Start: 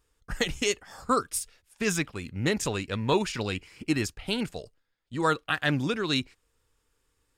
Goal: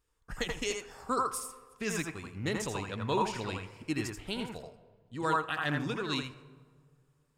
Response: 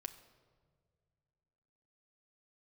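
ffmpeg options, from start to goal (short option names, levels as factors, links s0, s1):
-filter_complex "[0:a]asplit=2[s0][s1];[s1]equalizer=f=250:t=o:w=1:g=-3,equalizer=f=1000:t=o:w=1:g=11,equalizer=f=4000:t=o:w=1:g=-6[s2];[1:a]atrim=start_sample=2205,adelay=82[s3];[s2][s3]afir=irnorm=-1:irlink=0,volume=0.891[s4];[s0][s4]amix=inputs=2:normalize=0,volume=0.422"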